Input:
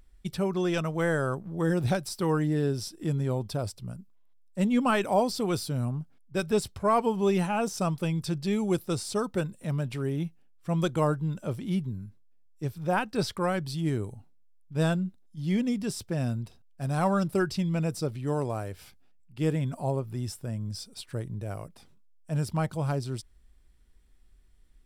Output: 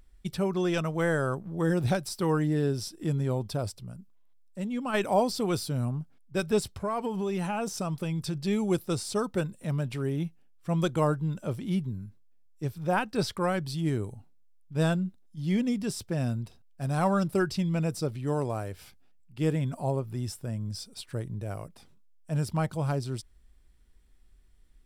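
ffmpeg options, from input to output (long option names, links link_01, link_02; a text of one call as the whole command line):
ffmpeg -i in.wav -filter_complex "[0:a]asplit=3[link_01][link_02][link_03];[link_01]afade=type=out:start_time=3.77:duration=0.02[link_04];[link_02]acompressor=threshold=-43dB:ratio=1.5:attack=3.2:release=140:knee=1:detection=peak,afade=type=in:start_time=3.77:duration=0.02,afade=type=out:start_time=4.93:duration=0.02[link_05];[link_03]afade=type=in:start_time=4.93:duration=0.02[link_06];[link_04][link_05][link_06]amix=inputs=3:normalize=0,asettb=1/sr,asplit=3[link_07][link_08][link_09];[link_07]atrim=end=6.684[link_10];[link_08]atrim=start=6.68:end=8.38,asetpts=PTS-STARTPTS,afade=type=in:duration=0.004:curve=qsin,afade=type=out:start_time=1.696:duration=0.004:curve=qsin,acompressor=threshold=-26dB:ratio=6:attack=3.2:release=140:knee=1:detection=peak[link_11];[link_09]atrim=start=8.376[link_12];[link_10][link_11]acrossfade=duration=0.004:curve1=hsin:curve2=qsin[link_13];[link_13][link_12]acrossfade=duration=0.004:curve1=qsin:curve2=hsin" out.wav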